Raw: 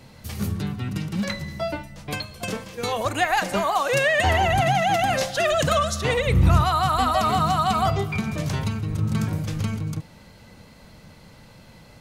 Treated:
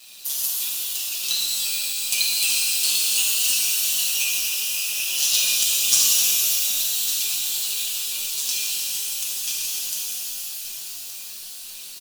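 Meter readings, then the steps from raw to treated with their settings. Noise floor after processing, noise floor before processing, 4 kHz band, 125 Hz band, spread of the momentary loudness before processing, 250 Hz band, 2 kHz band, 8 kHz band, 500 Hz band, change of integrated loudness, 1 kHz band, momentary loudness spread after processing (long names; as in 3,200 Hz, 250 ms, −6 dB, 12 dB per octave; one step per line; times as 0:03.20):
−37 dBFS, −49 dBFS, +9.5 dB, below −35 dB, 11 LU, below −25 dB, −4.0 dB, +17.5 dB, below −25 dB, +3.0 dB, −26.0 dB, 13 LU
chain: ring modulation 65 Hz
in parallel at −2 dB: brickwall limiter −17.5 dBFS, peak gain reduction 9.5 dB
on the sum: compressor whose output falls as the input rises −23 dBFS, ratio −0.5
high-shelf EQ 3,200 Hz +9 dB
flanger 0.91 Hz, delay 3.7 ms, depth 5.4 ms, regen +83%
linear-phase brick-wall high-pass 2,500 Hz
on a send: repeating echo 1,166 ms, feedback 22%, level −12.5 dB
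on the sum: tape wow and flutter 140 cents
log-companded quantiser 4 bits
high-shelf EQ 6,700 Hz +6.5 dB
comb filter 5.3 ms
reverb with rising layers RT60 4 s, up +12 semitones, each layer −2 dB, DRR −5.5 dB
level −1 dB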